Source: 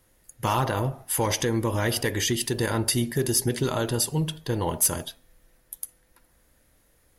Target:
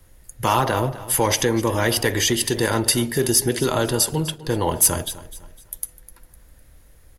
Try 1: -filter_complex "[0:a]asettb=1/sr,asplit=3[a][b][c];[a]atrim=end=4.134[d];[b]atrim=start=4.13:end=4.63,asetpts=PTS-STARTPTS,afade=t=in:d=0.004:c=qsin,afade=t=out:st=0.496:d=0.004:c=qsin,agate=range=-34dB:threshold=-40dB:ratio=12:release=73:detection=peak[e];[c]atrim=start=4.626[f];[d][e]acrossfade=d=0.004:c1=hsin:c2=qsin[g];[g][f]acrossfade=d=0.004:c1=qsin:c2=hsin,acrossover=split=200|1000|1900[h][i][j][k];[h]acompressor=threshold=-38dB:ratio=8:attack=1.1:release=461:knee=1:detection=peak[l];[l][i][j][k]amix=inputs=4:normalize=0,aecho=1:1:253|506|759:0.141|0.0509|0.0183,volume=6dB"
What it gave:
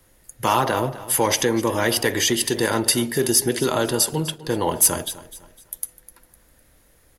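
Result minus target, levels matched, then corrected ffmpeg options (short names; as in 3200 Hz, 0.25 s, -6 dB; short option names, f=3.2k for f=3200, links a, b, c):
125 Hz band -4.0 dB
-filter_complex "[0:a]asettb=1/sr,asplit=3[a][b][c];[a]atrim=end=4.134[d];[b]atrim=start=4.13:end=4.63,asetpts=PTS-STARTPTS,afade=t=in:d=0.004:c=qsin,afade=t=out:st=0.496:d=0.004:c=qsin,agate=range=-34dB:threshold=-40dB:ratio=12:release=73:detection=peak[e];[c]atrim=start=4.626[f];[d][e]acrossfade=d=0.004:c1=hsin:c2=qsin[g];[g][f]acrossfade=d=0.004:c1=qsin:c2=hsin,acrossover=split=200|1000|1900[h][i][j][k];[h]acompressor=threshold=-38dB:ratio=8:attack=1.1:release=461:knee=1:detection=peak,lowshelf=f=140:g=11.5[l];[l][i][j][k]amix=inputs=4:normalize=0,aecho=1:1:253|506|759:0.141|0.0509|0.0183,volume=6dB"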